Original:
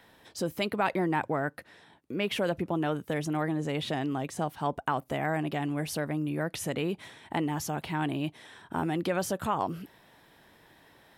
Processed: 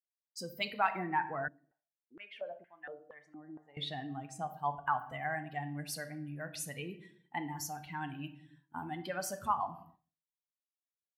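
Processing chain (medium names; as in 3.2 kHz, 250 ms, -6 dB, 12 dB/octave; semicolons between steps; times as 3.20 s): expander on every frequency bin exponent 2; simulated room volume 140 m³, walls mixed, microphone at 0.36 m; expander -52 dBFS; resonant low shelf 630 Hz -8 dB, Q 1.5; 1.48–3.77 s: step-sequenced band-pass 4.3 Hz 270–1900 Hz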